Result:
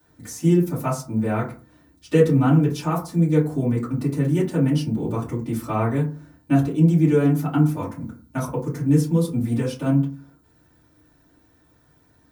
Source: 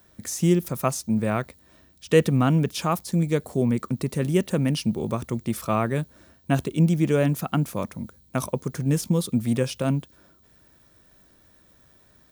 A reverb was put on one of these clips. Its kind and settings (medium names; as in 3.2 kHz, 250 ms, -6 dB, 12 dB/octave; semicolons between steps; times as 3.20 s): FDN reverb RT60 0.38 s, low-frequency decay 1.3×, high-frequency decay 0.4×, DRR -10 dB; trim -11 dB